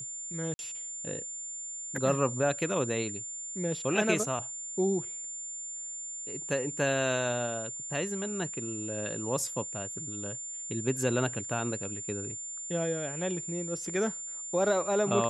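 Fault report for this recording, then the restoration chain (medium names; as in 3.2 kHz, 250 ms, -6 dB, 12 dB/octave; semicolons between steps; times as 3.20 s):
whine 7.2 kHz -37 dBFS
0.54–0.59 s: dropout 51 ms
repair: band-stop 7.2 kHz, Q 30; interpolate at 0.54 s, 51 ms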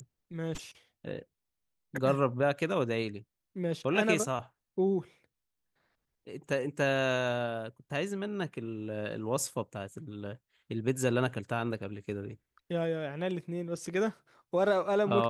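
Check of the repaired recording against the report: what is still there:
nothing left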